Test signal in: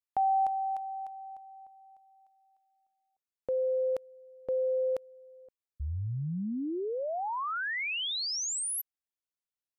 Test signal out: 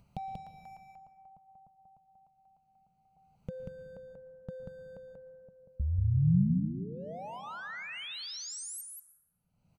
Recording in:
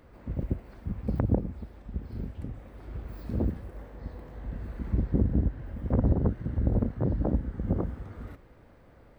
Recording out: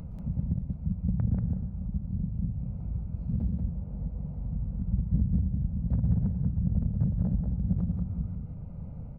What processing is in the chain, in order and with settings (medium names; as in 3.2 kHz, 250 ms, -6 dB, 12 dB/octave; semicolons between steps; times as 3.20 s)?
local Wiener filter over 25 samples; upward compressor, threshold -32 dBFS; band-stop 1.1 kHz, Q 9.1; compression 2.5:1, threshold -32 dBFS; resonant low shelf 240 Hz +10.5 dB, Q 3; on a send: delay 187 ms -3.5 dB; on the sum: plate-style reverb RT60 1.9 s, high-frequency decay 0.35×, pre-delay 105 ms, DRR 11 dB; trim -7.5 dB